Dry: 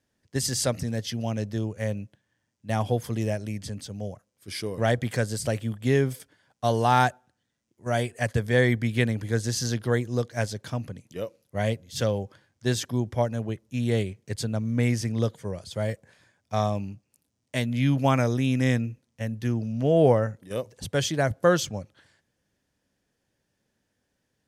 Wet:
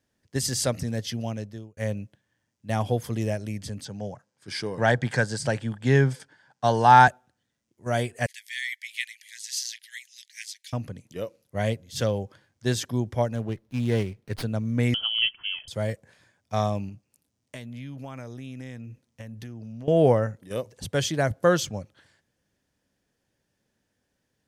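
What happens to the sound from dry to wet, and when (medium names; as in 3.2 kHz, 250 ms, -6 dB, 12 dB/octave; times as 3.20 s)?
1.15–1.77 s: fade out
3.85–7.08 s: cabinet simulation 110–8900 Hz, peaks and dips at 140 Hz +7 dB, 870 Hz +9 dB, 1.6 kHz +9 dB, 4.8 kHz +3 dB
8.26–10.73 s: steep high-pass 1.9 kHz 72 dB/octave
13.35–14.43 s: sliding maximum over 5 samples
14.94–15.68 s: frequency inversion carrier 3.2 kHz
16.89–19.88 s: compression, threshold -36 dBFS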